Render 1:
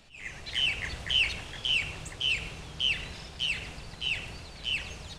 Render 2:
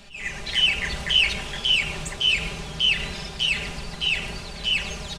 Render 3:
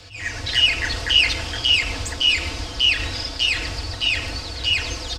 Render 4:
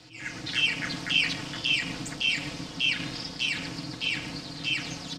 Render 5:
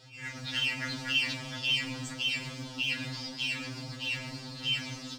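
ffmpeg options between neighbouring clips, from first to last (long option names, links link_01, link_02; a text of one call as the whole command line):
ffmpeg -i in.wav -filter_complex "[0:a]asplit=2[link_01][link_02];[link_02]alimiter=level_in=2.5dB:limit=-24dB:level=0:latency=1:release=117,volume=-2.5dB,volume=-2dB[link_03];[link_01][link_03]amix=inputs=2:normalize=0,aecho=1:1:5:0.65,volume=3dB" out.wav
ffmpeg -i in.wav -af "equalizer=frequency=2500:width_type=o:width=0.33:gain=-4,equalizer=frequency=5000:width_type=o:width=0.33:gain=9,equalizer=frequency=10000:width_type=o:width=0.33:gain=-5,afreqshift=-110,volume=4dB" out.wav
ffmpeg -i in.wav -af "aeval=exprs='val(0)*sin(2*PI*220*n/s)':channel_layout=same,volume=-5.5dB" out.wav
ffmpeg -i in.wav -filter_complex "[0:a]asplit=2[link_01][link_02];[link_02]acrusher=bits=5:mode=log:mix=0:aa=0.000001,volume=-6dB[link_03];[link_01][link_03]amix=inputs=2:normalize=0,afftfilt=real='re*2.45*eq(mod(b,6),0)':imag='im*2.45*eq(mod(b,6),0)':win_size=2048:overlap=0.75,volume=-5dB" out.wav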